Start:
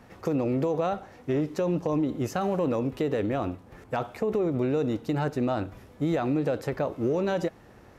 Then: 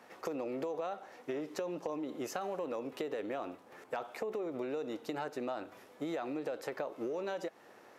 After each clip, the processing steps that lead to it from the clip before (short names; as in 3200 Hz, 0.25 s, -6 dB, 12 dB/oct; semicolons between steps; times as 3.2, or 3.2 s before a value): HPF 400 Hz 12 dB/oct; compressor, threshold -33 dBFS, peak gain reduction 9 dB; gain -1.5 dB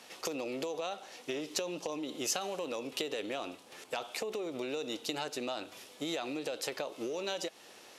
band shelf 5500 Hz +14.5 dB 2.5 oct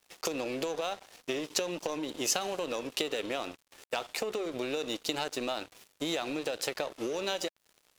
crossover distortion -48.5 dBFS; gain +5 dB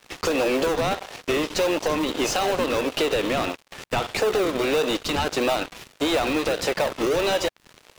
overdrive pedal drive 27 dB, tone 2700 Hz, clips at -12 dBFS; in parallel at -6 dB: decimation with a swept rate 39×, swing 100% 1.6 Hz; on the sum: gain -1.5 dB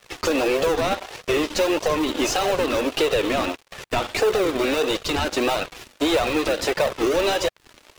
flange 1.6 Hz, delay 1.5 ms, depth 2.2 ms, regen -29%; gain +5 dB